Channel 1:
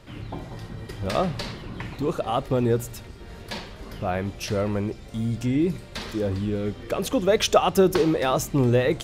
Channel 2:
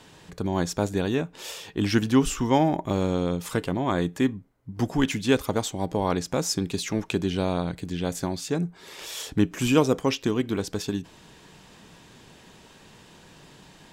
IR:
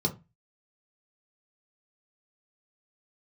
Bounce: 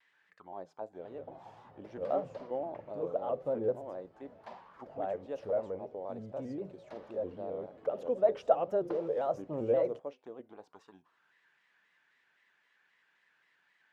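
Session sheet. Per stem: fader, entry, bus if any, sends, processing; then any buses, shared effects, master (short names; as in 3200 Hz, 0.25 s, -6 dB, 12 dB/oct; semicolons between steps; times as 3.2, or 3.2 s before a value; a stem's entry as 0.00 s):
-1.5 dB, 0.95 s, send -21.5 dB, dry
-9.0 dB, 0.00 s, no send, dry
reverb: on, RT60 0.25 s, pre-delay 3 ms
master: auto-wah 570–1900 Hz, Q 4.1, down, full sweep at -29 dBFS; shaped vibrato square 3.8 Hz, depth 100 cents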